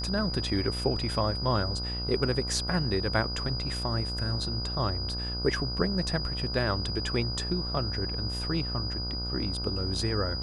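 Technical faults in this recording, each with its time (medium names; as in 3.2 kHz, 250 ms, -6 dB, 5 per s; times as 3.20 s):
buzz 60 Hz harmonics 26 -35 dBFS
whine 4.9 kHz -34 dBFS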